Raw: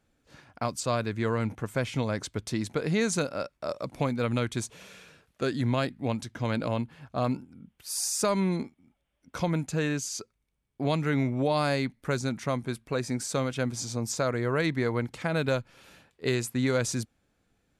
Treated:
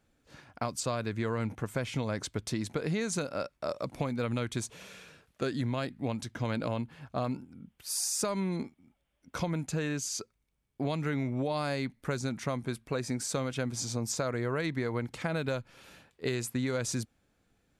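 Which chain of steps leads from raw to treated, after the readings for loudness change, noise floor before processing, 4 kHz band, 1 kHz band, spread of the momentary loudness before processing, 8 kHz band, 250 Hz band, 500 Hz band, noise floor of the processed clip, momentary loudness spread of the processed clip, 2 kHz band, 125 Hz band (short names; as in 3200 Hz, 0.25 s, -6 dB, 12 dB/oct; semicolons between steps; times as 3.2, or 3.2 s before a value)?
-4.0 dB, -77 dBFS, -3.0 dB, -4.5 dB, 8 LU, -1.5 dB, -4.0 dB, -4.5 dB, -77 dBFS, 6 LU, -4.5 dB, -4.0 dB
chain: compressor, threshold -28 dBFS, peak gain reduction 7 dB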